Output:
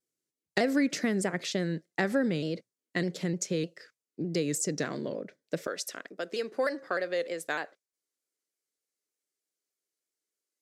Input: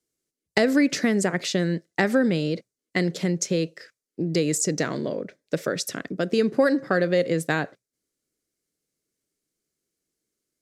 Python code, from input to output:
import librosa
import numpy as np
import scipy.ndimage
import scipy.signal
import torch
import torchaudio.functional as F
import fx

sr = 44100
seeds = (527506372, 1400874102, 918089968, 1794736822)

y = fx.highpass(x, sr, hz=fx.steps((0.0, 110.0), (5.67, 490.0)), slope=12)
y = fx.vibrato_shape(y, sr, shape='saw_down', rate_hz=3.3, depth_cents=100.0)
y = y * librosa.db_to_amplitude(-6.5)